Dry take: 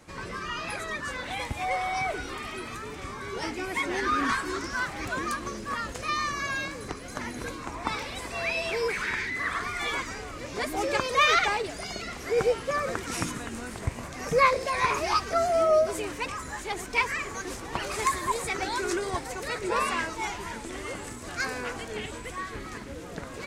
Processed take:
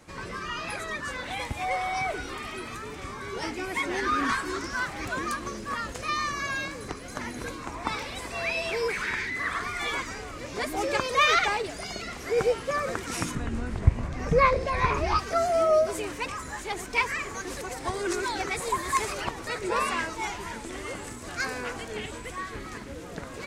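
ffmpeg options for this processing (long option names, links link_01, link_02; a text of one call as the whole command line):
ffmpeg -i in.wav -filter_complex "[0:a]asettb=1/sr,asplit=3[link_01][link_02][link_03];[link_01]atrim=end=13.354[link_04];[link_02]atrim=start=13.35:end=15.19,asetpts=PTS-STARTPTS,afade=type=in:duration=0.004:curve=qsin,afade=type=out:start_time=1.836:duration=0.004:curve=qsin,aemphasis=mode=reproduction:type=bsi[link_05];[link_03]atrim=start=15.186[link_06];[link_04][link_05]acrossfade=duration=0.004:curve1=hsin:curve2=qsin[link_07];[link_07][link_06]acrossfade=duration=0.004:curve1=qsin:curve2=hsin,asplit=3[link_08][link_09][link_10];[link_08]atrim=end=17.572[link_11];[link_09]atrim=start=17.568:end=19.472,asetpts=PTS-STARTPTS,areverse[link_12];[link_10]atrim=start=19.468[link_13];[link_11][link_12]acrossfade=duration=0.004:curve1=hsin:curve2=hsin[link_14];[link_14][link_13]acrossfade=duration=0.004:curve1=hsin:curve2=hsin" out.wav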